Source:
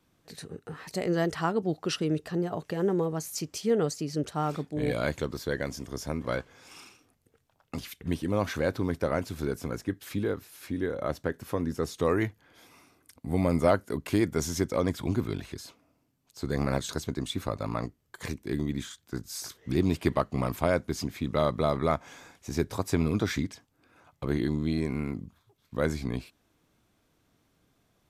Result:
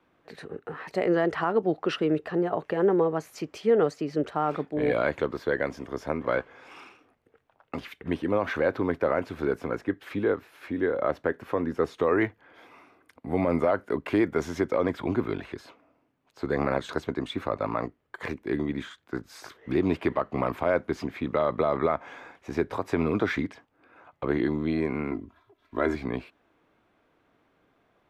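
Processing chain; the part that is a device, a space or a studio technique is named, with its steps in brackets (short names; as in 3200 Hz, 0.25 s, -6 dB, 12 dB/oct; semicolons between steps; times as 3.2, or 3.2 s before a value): DJ mixer with the lows and highs turned down (three-band isolator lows -12 dB, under 290 Hz, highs -22 dB, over 2800 Hz; limiter -20.5 dBFS, peak gain reduction 9 dB); 25.11–25.95 comb 3 ms, depth 77%; gain +7 dB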